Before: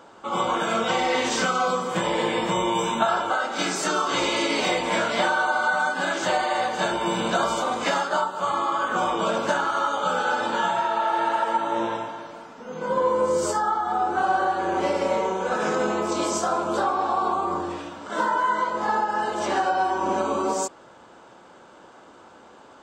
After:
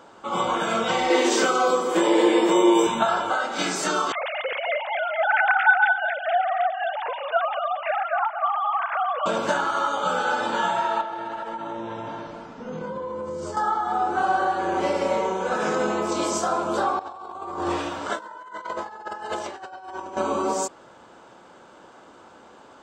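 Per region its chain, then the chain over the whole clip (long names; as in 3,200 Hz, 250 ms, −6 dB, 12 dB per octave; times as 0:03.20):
0:01.10–0:02.87: high-pass with resonance 340 Hz, resonance Q 3.7 + high-shelf EQ 9,800 Hz +9 dB
0:04.12–0:09.26: three sine waves on the formant tracks + repeating echo 227 ms, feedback 18%, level −11 dB
0:11.01–0:13.57: low-pass filter 6,400 Hz + low-shelf EQ 240 Hz +11.5 dB + downward compressor 10 to 1, threshold −28 dBFS
0:16.99–0:20.17: parametric band 210 Hz −7 dB 0.74 octaves + compressor whose output falls as the input rises −31 dBFS, ratio −0.5
whole clip: no processing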